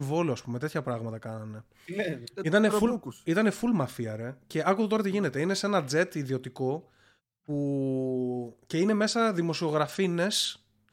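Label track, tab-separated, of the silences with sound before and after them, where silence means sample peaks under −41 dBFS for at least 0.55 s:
6.800000	7.490000	silence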